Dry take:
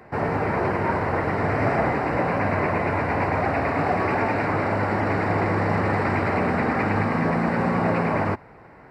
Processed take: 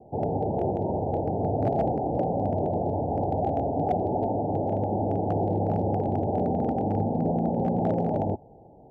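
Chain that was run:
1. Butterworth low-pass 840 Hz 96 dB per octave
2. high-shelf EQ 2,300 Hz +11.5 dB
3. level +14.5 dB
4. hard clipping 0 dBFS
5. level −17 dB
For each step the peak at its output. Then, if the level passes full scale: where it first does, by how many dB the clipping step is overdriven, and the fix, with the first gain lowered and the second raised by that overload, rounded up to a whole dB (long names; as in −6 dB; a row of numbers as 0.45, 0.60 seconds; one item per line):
−10.0, −9.5, +5.0, 0.0, −17.0 dBFS
step 3, 5.0 dB
step 3 +9.5 dB, step 5 −12 dB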